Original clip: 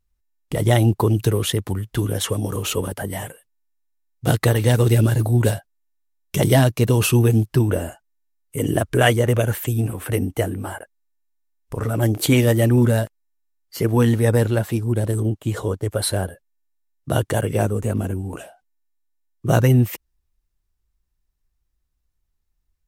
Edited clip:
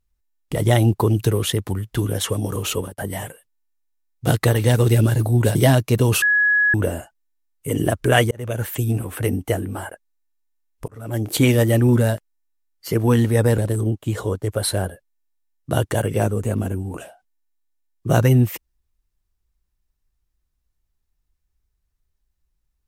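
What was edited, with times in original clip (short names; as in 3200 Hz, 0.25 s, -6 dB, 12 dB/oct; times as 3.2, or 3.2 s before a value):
2.68–2.98 fade out equal-power
5.55–6.44 cut
7.11–7.63 bleep 1680 Hz -13.5 dBFS
9.2–9.63 fade in
11.77–12.3 fade in
14.47–14.97 cut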